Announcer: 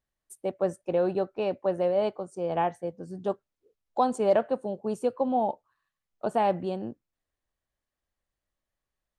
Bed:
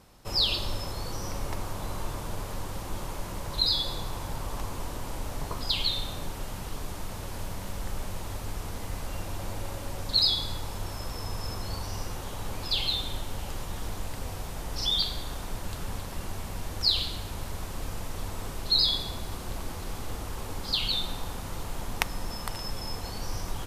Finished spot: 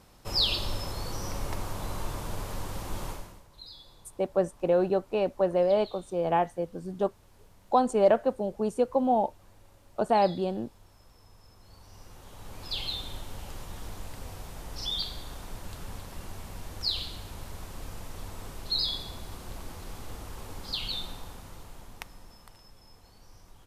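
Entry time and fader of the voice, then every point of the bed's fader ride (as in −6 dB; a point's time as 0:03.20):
3.75 s, +1.5 dB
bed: 0:03.10 −0.5 dB
0:03.48 −22 dB
0:11.54 −22 dB
0:12.77 −5.5 dB
0:21.01 −5.5 dB
0:22.72 −20.5 dB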